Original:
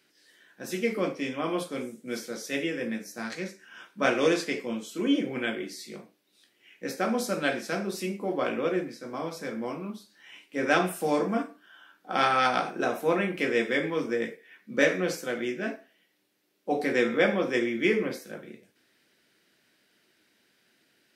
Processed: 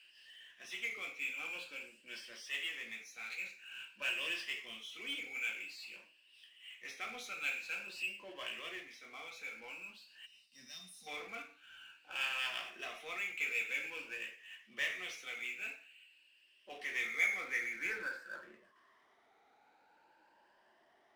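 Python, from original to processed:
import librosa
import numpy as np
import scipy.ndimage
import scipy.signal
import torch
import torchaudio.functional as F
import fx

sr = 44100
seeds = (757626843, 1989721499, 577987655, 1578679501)

y = fx.spec_ripple(x, sr, per_octave=1.3, drift_hz=0.49, depth_db=11)
y = fx.spec_box(y, sr, start_s=10.26, length_s=0.81, low_hz=270.0, high_hz=3600.0, gain_db=-26)
y = fx.filter_sweep_bandpass(y, sr, from_hz=2700.0, to_hz=840.0, start_s=16.84, end_s=19.31, q=6.7)
y = fx.power_curve(y, sr, exponent=0.7)
y = y * 10.0 ** (-4.0 / 20.0)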